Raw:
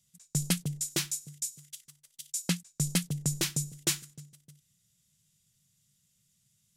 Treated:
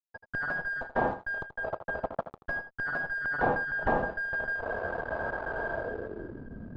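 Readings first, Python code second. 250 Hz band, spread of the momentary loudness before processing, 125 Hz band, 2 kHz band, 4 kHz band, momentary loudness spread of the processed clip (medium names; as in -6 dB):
-2.5 dB, 18 LU, -8.5 dB, +16.0 dB, under -20 dB, 9 LU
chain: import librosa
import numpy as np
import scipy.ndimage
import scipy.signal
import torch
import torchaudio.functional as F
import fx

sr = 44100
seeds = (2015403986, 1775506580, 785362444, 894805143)

y = fx.band_shuffle(x, sr, order='2143')
y = fx.recorder_agc(y, sr, target_db=-19.5, rise_db_per_s=60.0, max_gain_db=30)
y = scipy.signal.sosfilt(scipy.signal.butter(2, 1300.0, 'lowpass', fs=sr, output='sos'), y)
y = fx.low_shelf(y, sr, hz=250.0, db=3.0)
y = fx.hpss(y, sr, part='percussive', gain_db=-12)
y = fx.fuzz(y, sr, gain_db=51.0, gate_db=-57.0)
y = y + 10.0 ** (-12.0 / 20.0) * np.pad(y, (int(81 * sr / 1000.0), 0))[:len(y)]
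y = fx.filter_sweep_lowpass(y, sr, from_hz=740.0, to_hz=220.0, start_s=5.72, end_s=6.48, q=2.2)
y = y * 10.0 ** (-6.0 / 20.0)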